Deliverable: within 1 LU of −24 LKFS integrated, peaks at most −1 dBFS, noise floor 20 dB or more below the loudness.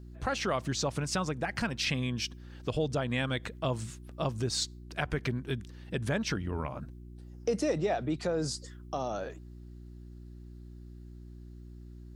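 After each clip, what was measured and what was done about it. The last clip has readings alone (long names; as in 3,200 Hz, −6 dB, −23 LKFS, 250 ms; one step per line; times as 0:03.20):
mains hum 60 Hz; hum harmonics up to 360 Hz; level of the hum −45 dBFS; integrated loudness −33.5 LKFS; sample peak −16.0 dBFS; target loudness −24.0 LKFS
→ hum removal 60 Hz, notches 6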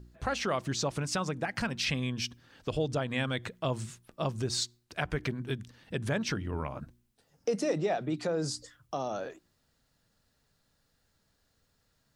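mains hum none found; integrated loudness −33.5 LKFS; sample peak −16.5 dBFS; target loudness −24.0 LKFS
→ level +9.5 dB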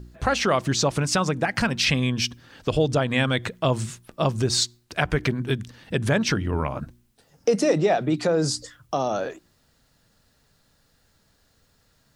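integrated loudness −24.0 LKFS; sample peak −7.0 dBFS; background noise floor −65 dBFS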